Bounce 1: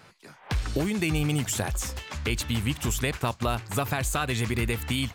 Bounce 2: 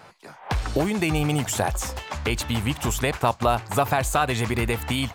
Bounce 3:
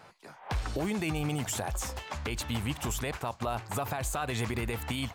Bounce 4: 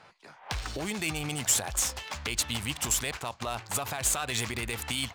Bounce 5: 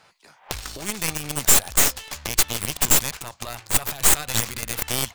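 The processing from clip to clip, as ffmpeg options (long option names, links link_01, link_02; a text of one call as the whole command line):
ffmpeg -i in.wav -af "equalizer=frequency=770:width=0.99:gain=9,volume=1.5dB" out.wav
ffmpeg -i in.wav -af "alimiter=limit=-16.5dB:level=0:latency=1:release=43,volume=-6dB" out.wav
ffmpeg -i in.wav -af "crystalizer=i=7:c=0,adynamicsmooth=sensitivity=5:basefreq=2800,volume=-4dB" out.wav
ffmpeg -i in.wav -af "crystalizer=i=2.5:c=0,aeval=exprs='0.841*(cos(1*acos(clip(val(0)/0.841,-1,1)))-cos(1*PI/2))+0.237*(cos(8*acos(clip(val(0)/0.841,-1,1)))-cos(8*PI/2))':channel_layout=same,volume=-2.5dB" out.wav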